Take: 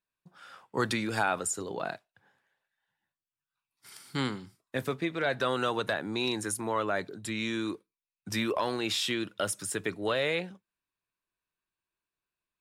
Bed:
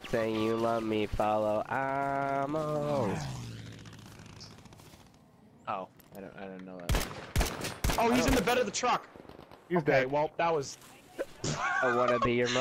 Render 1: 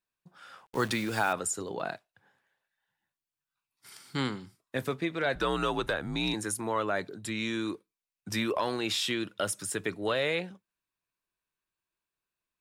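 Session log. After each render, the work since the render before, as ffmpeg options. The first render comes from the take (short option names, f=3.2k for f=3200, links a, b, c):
-filter_complex "[0:a]asettb=1/sr,asplit=3[a][b][c];[a]atrim=end=0.664[d];[b]atrim=start=0.66:end=1.33,asetpts=PTS-STARTPTS,afade=t=in:d=0.004:c=qsin,afade=t=out:st=0.666:d=0.004:c=qsin,acrusher=bits=8:dc=4:mix=0:aa=0.000001[e];[c]atrim=start=1.326[f];[d][e]acrossfade=d=0.004:c1=hsin:c2=qsin[g];[g][f]acrossfade=d=0.004:c1=qsin:c2=hsin,asettb=1/sr,asplit=3[h][i][j];[h]atrim=end=3.954[k];[i]atrim=start=3.95:end=4.41,asetpts=PTS-STARTPTS,afade=t=in:d=0.004:c=qsin,afade=t=out:st=0.456:d=0.004:c=qsin,equalizer=f=11k:w=4.4:g=-14[l];[j]atrim=start=4.406[m];[k][l]acrossfade=d=0.004:c1=hsin:c2=qsin[n];[n][m]acrossfade=d=0.004:c1=qsin:c2=hsin,asettb=1/sr,asplit=3[o][p][q];[o]atrim=end=5.354[r];[p]atrim=start=5.35:end=6.34,asetpts=PTS-STARTPTS,afade=t=in:d=0.004:c=qsin,afade=t=out:st=0.986:d=0.004:c=qsin,afreqshift=-73[s];[q]atrim=start=6.336[t];[r][s]acrossfade=d=0.004:c1=hsin:c2=qsin[u];[u][t]acrossfade=d=0.004:c1=qsin:c2=hsin"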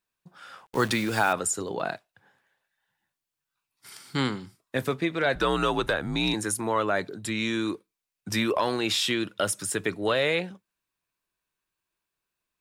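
-af "volume=4.5dB"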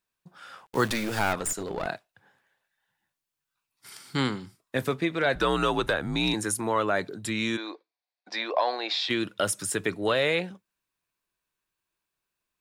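-filter_complex "[0:a]asettb=1/sr,asplit=3[a][b][c];[a]atrim=end=0.884[d];[b]atrim=start=0.88:end=1.87,asetpts=PTS-STARTPTS,afade=t=in:d=0.004:c=qsin,afade=t=out:st=0.986:d=0.004:c=qsin,aeval=exprs='clip(val(0),-1,0.0266)':c=same[e];[c]atrim=start=1.866[f];[d][e]acrossfade=d=0.004:c1=hsin:c2=qsin[g];[g][f]acrossfade=d=0.004:c1=qsin:c2=hsin,asplit=3[h][i][j];[h]afade=t=out:st=7.56:d=0.02[k];[i]highpass=f=390:w=0.5412,highpass=f=390:w=1.3066,equalizer=f=400:t=q:w=4:g=-9,equalizer=f=720:t=q:w=4:g=8,equalizer=f=1.3k:t=q:w=4:g=-7,equalizer=f=2.9k:t=q:w=4:g=-9,equalizer=f=4.4k:t=q:w=4:g=5,lowpass=f=4.4k:w=0.5412,lowpass=f=4.4k:w=1.3066,afade=t=in:st=7.56:d=0.02,afade=t=out:st=9.09:d=0.02[l];[j]afade=t=in:st=9.09:d=0.02[m];[k][l][m]amix=inputs=3:normalize=0"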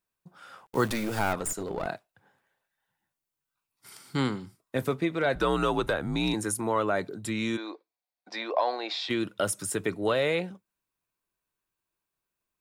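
-af "equalizer=f=3.6k:w=0.46:g=-5,bandreject=f=1.7k:w=19"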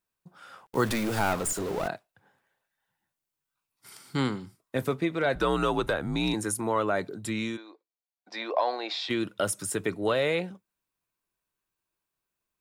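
-filter_complex "[0:a]asettb=1/sr,asplit=3[a][b][c];[a]atrim=end=0.864[d];[b]atrim=start=0.86:end=1.88,asetpts=PTS-STARTPTS,afade=t=in:d=0.004:c=qsin,afade=t=out:st=1.016:d=0.004:c=qsin,aeval=exprs='val(0)+0.5*0.0188*sgn(val(0))':c=same[e];[c]atrim=start=1.876[f];[d][e]acrossfade=d=0.004:c1=hsin:c2=qsin[g];[g][f]acrossfade=d=0.004:c1=qsin:c2=hsin,asplit=3[h][i][j];[h]atrim=end=7.64,asetpts=PTS-STARTPTS,afade=t=out:st=7.38:d=0.26:silence=0.281838[k];[i]atrim=start=7.64:end=8.16,asetpts=PTS-STARTPTS,volume=-11dB[l];[j]atrim=start=8.16,asetpts=PTS-STARTPTS,afade=t=in:d=0.26:silence=0.281838[m];[k][l][m]concat=n=3:v=0:a=1"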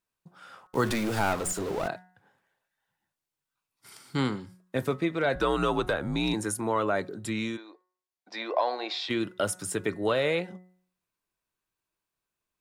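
-af "highshelf=f=12k:g=-6,bandreject=f=182.6:t=h:w=4,bandreject=f=365.2:t=h:w=4,bandreject=f=547.8:t=h:w=4,bandreject=f=730.4:t=h:w=4,bandreject=f=913:t=h:w=4,bandreject=f=1.0956k:t=h:w=4,bandreject=f=1.2782k:t=h:w=4,bandreject=f=1.4608k:t=h:w=4,bandreject=f=1.6434k:t=h:w=4,bandreject=f=1.826k:t=h:w=4,bandreject=f=2.0086k:t=h:w=4"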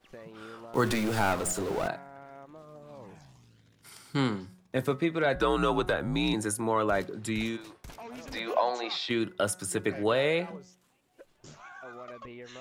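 -filter_complex "[1:a]volume=-17dB[a];[0:a][a]amix=inputs=2:normalize=0"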